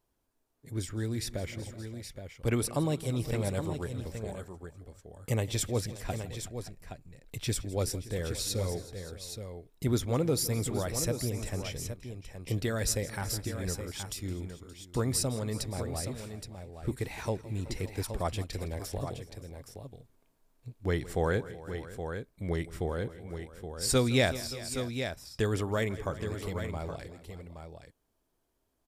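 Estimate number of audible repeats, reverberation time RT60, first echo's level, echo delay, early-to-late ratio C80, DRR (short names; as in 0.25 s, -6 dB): 4, none, -18.0 dB, 0.164 s, none, none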